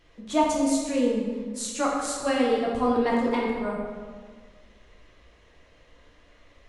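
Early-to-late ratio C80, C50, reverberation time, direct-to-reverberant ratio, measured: 3.0 dB, 1.0 dB, 1.7 s, -4.0 dB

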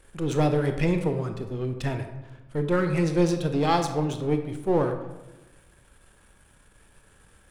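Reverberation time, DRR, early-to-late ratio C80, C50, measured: 1.1 s, 6.0 dB, 10.0 dB, 8.0 dB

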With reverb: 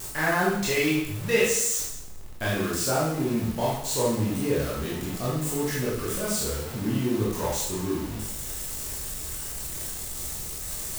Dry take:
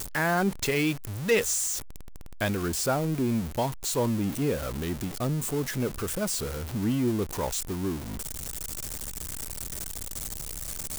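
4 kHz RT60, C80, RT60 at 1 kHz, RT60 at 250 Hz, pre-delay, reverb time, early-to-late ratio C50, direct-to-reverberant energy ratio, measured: 0.75 s, 5.0 dB, 0.80 s, 0.80 s, 16 ms, 0.80 s, 0.5 dB, -7.0 dB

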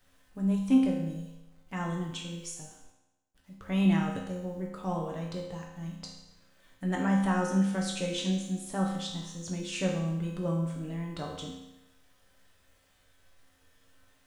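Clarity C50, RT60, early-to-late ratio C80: 3.5 dB, 0.95 s, 6.0 dB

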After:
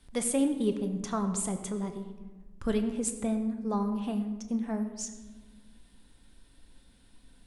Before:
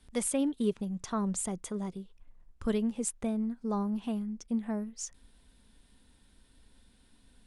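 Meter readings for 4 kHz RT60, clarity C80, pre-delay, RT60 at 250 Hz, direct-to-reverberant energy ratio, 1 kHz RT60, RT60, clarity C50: 0.80 s, 10.0 dB, 6 ms, 2.1 s, 6.0 dB, 1.2 s, 1.3 s, 9.0 dB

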